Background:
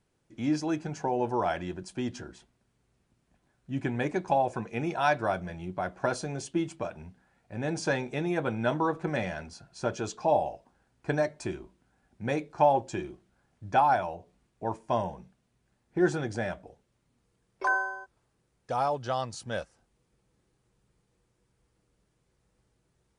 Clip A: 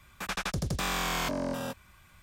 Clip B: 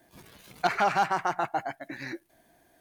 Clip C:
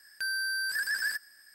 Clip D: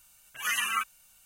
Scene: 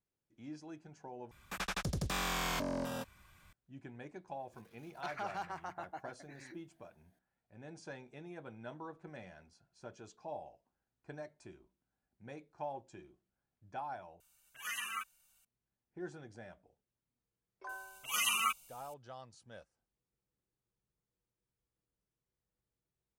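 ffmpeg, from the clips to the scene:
ffmpeg -i bed.wav -i cue0.wav -i cue1.wav -i cue2.wav -i cue3.wav -filter_complex "[4:a]asplit=2[link_01][link_02];[0:a]volume=-19.5dB[link_03];[link_02]asuperstop=centerf=1700:order=4:qfactor=2[link_04];[link_03]asplit=3[link_05][link_06][link_07];[link_05]atrim=end=1.314[link_08];[1:a]atrim=end=2.22,asetpts=PTS-STARTPTS,volume=-5dB[link_09];[link_06]atrim=start=3.526:end=14.204[link_10];[link_01]atrim=end=1.25,asetpts=PTS-STARTPTS,volume=-11.5dB[link_11];[link_07]atrim=start=15.446[link_12];[2:a]atrim=end=2.8,asetpts=PTS-STARTPTS,volume=-16.5dB,afade=type=in:duration=0.004:curve=hsin,afade=type=out:start_time=2.796:duration=0.004:curve=hsin,adelay=4390[link_13];[link_04]atrim=end=1.25,asetpts=PTS-STARTPTS,volume=-1dB,afade=type=in:duration=0.004:curve=hsin,afade=type=out:start_time=1.246:duration=0.004:curve=hsin,adelay=17690[link_14];[link_08][link_09]acrossfade=duration=0.004:curve1=hsin:curve2=hsin[link_15];[link_15][link_10]acrossfade=duration=0.004:curve1=hsin:curve2=hsin[link_16];[link_16][link_11]acrossfade=duration=0.004:curve1=hsin:curve2=hsin[link_17];[link_17][link_12]acrossfade=duration=0.004:curve1=hsin:curve2=hsin[link_18];[link_18][link_13][link_14]amix=inputs=3:normalize=0" out.wav

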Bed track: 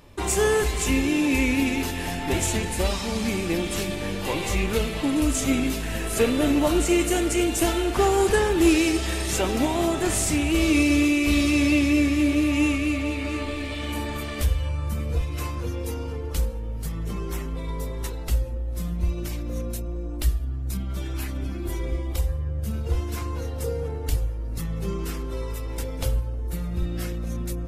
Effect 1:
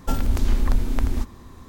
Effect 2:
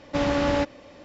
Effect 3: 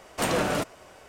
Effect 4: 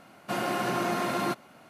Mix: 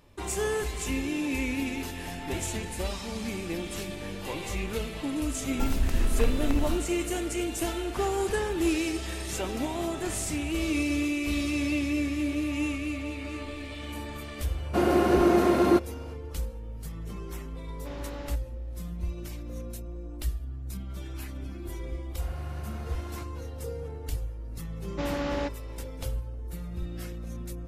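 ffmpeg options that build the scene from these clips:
ffmpeg -i bed.wav -i cue0.wav -i cue1.wav -i cue2.wav -i cue3.wav -filter_complex "[4:a]asplit=2[link_01][link_02];[2:a]asplit=2[link_03][link_04];[0:a]volume=-8dB[link_05];[link_01]equalizer=frequency=360:width=1.1:gain=14.5[link_06];[1:a]atrim=end=1.68,asetpts=PTS-STARTPTS,volume=-5.5dB,afade=type=in:duration=0.004:curve=hsin,afade=type=out:start_time=1.676:duration=0.004:curve=hsin,adelay=5520[link_07];[link_06]atrim=end=1.69,asetpts=PTS-STARTPTS,volume=-1.5dB,afade=type=in:duration=0.004:curve=hsin,afade=type=out:start_time=1.686:duration=0.004:curve=hsin,adelay=14450[link_08];[link_03]atrim=end=1.04,asetpts=PTS-STARTPTS,volume=-17.5dB,afade=type=in:duration=0.004:curve=hsin,afade=type=out:start_time=1.036:duration=0.004:curve=hsin,adelay=17710[link_09];[link_02]atrim=end=1.69,asetpts=PTS-STARTPTS,volume=-17dB,afade=type=in:duration=0.004:curve=hsin,afade=type=out:start_time=1.686:duration=0.004:curve=hsin,adelay=21900[link_10];[link_04]atrim=end=1.04,asetpts=PTS-STARTPTS,volume=-7.5dB,afade=type=in:duration=0.004:curve=hsin,afade=type=out:start_time=1.036:duration=0.004:curve=hsin,adelay=24840[link_11];[link_05][link_07][link_08][link_09][link_10][link_11]amix=inputs=6:normalize=0" out.wav

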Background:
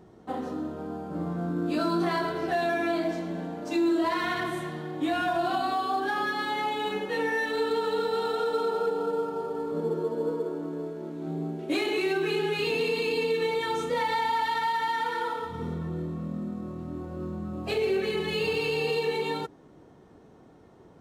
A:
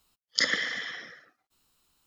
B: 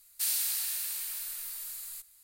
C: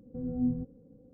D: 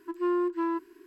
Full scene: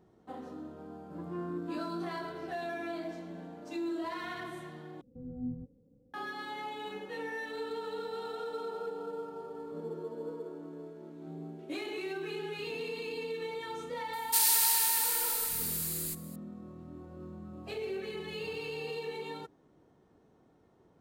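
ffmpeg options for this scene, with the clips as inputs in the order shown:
ffmpeg -i bed.wav -i cue0.wav -i cue1.wav -i cue2.wav -i cue3.wav -filter_complex "[0:a]volume=-11dB[link_01];[3:a]equalizer=frequency=94:width=1.5:gain=3[link_02];[2:a]alimiter=level_in=19.5dB:limit=-1dB:release=50:level=0:latency=1[link_03];[link_01]asplit=2[link_04][link_05];[link_04]atrim=end=5.014[link_06];[link_02]atrim=end=1.13,asetpts=PTS-STARTPTS,volume=-9dB[link_07];[link_05]atrim=start=6.136[link_08];[4:a]atrim=end=1.06,asetpts=PTS-STARTPTS,volume=-13.5dB,afade=type=in:duration=0.004:curve=hsin,afade=type=out:start_time=1.056:duration=0.004:curve=hsin,adelay=1100[link_09];[link_03]atrim=end=2.23,asetpts=PTS-STARTPTS,volume=-14dB,afade=type=in:duration=0.004:curve=hsin,afade=type=out:start_time=2.226:duration=0.004:curve=hsin,adelay=14130[link_10];[link_06][link_07]acrossfade=duration=0.004:curve1=hsin:curve2=hsin[link_11];[link_11][link_08]acrossfade=duration=0.004:curve1=hsin:curve2=hsin[link_12];[link_12][link_09][link_10]amix=inputs=3:normalize=0" out.wav

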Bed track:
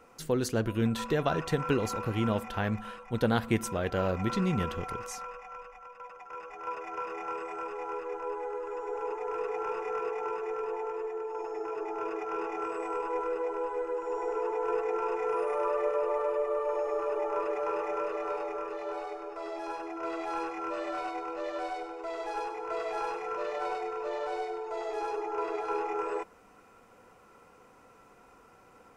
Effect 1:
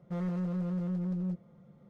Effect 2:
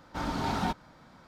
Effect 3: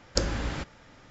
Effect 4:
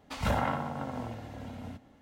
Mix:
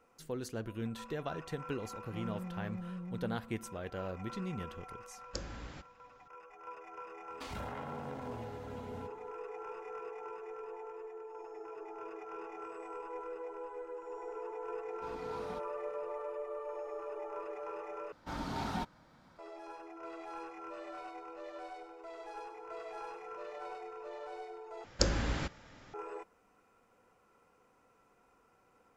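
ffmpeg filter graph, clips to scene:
ffmpeg -i bed.wav -i cue0.wav -i cue1.wav -i cue2.wav -i cue3.wav -filter_complex "[3:a]asplit=2[link_01][link_02];[2:a]asplit=2[link_03][link_04];[0:a]volume=-11dB[link_05];[4:a]acompressor=threshold=-32dB:ratio=12:attack=0.16:release=89:knee=1:detection=peak[link_06];[link_05]asplit=3[link_07][link_08][link_09];[link_07]atrim=end=18.124[link_10];[link_04]atrim=end=1.27,asetpts=PTS-STARTPTS,volume=-7dB[link_11];[link_08]atrim=start=19.386:end=24.844[link_12];[link_02]atrim=end=1.1,asetpts=PTS-STARTPTS,volume=-2.5dB[link_13];[link_09]atrim=start=25.936[link_14];[1:a]atrim=end=1.89,asetpts=PTS-STARTPTS,volume=-10dB,afade=type=in:duration=0.004:curve=hsin,afade=type=out:start_time=1.886:duration=0.004:curve=hsin,adelay=2020[link_15];[link_01]atrim=end=1.1,asetpts=PTS-STARTPTS,volume=-15dB,afade=type=in:duration=0.004:curve=hsin,afade=type=out:start_time=1.096:duration=0.004:curve=hsin,adelay=5180[link_16];[link_06]atrim=end=2.01,asetpts=PTS-STARTPTS,volume=-4.5dB,afade=type=in:duration=0.004:curve=hsin,afade=type=out:start_time=2.006:duration=0.004:curve=hsin,adelay=321930S[link_17];[link_03]atrim=end=1.27,asetpts=PTS-STARTPTS,volume=-18dB,afade=type=in:duration=0.004:curve=hsin,afade=type=out:start_time=1.266:duration=0.004:curve=hsin,adelay=14870[link_18];[link_10][link_11]acrossfade=duration=0.004:curve1=hsin:curve2=hsin[link_19];[link_19][link_12]acrossfade=duration=0.004:curve1=hsin:curve2=hsin[link_20];[link_20][link_13]acrossfade=duration=0.004:curve1=hsin:curve2=hsin[link_21];[link_21][link_14]acrossfade=duration=0.004:curve1=hsin:curve2=hsin[link_22];[link_22][link_15][link_16][link_17][link_18]amix=inputs=5:normalize=0" out.wav

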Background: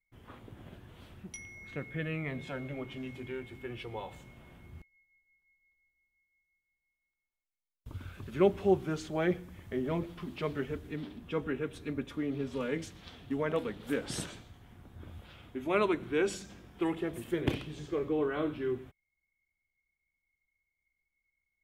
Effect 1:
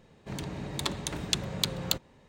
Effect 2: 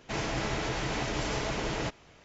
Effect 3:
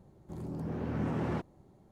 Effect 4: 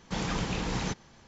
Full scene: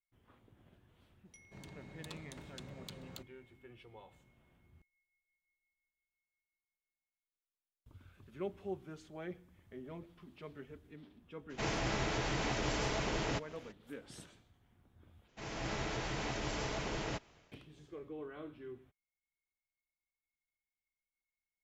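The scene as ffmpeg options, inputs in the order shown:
ffmpeg -i bed.wav -i cue0.wav -i cue1.wav -filter_complex "[2:a]asplit=2[link_01][link_02];[0:a]volume=-15dB[link_03];[1:a]alimiter=limit=-15.5dB:level=0:latency=1:release=15[link_04];[link_01]acompressor=mode=upward:threshold=-46dB:ratio=2.5:attack=3.2:release=140:knee=2.83:detection=peak[link_05];[link_02]dynaudnorm=framelen=110:gausssize=5:maxgain=7.5dB[link_06];[link_03]asplit=2[link_07][link_08];[link_07]atrim=end=15.284[link_09];[link_06]atrim=end=2.24,asetpts=PTS-STARTPTS,volume=-14dB[link_10];[link_08]atrim=start=17.516[link_11];[link_04]atrim=end=2.28,asetpts=PTS-STARTPTS,volume=-16dB,afade=type=in:duration=0.004:curve=hsin,afade=type=out:start_time=2.276:duration=0.004:curve=hsin,adelay=1250[link_12];[link_05]atrim=end=2.24,asetpts=PTS-STARTPTS,volume=-3.5dB,afade=type=in:duration=0.02,afade=type=out:start_time=2.22:duration=0.02,adelay=11490[link_13];[link_09][link_10]acrossfade=duration=0.004:curve1=hsin:curve2=hsin[link_14];[link_14][link_11]acrossfade=duration=0.004:curve1=hsin:curve2=hsin[link_15];[link_15][link_12][link_13]amix=inputs=3:normalize=0" out.wav

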